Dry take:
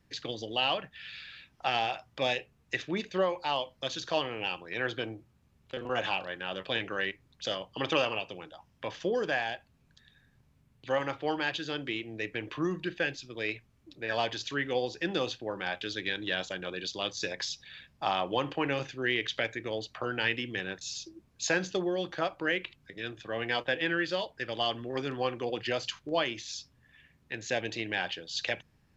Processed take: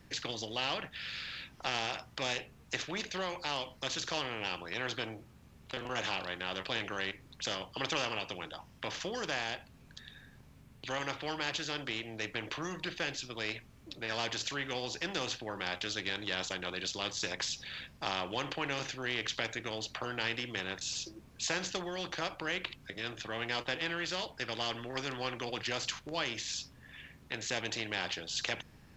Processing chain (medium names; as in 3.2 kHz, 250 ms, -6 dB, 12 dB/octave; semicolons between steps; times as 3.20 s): spectrum-flattening compressor 2:1; trim -2.5 dB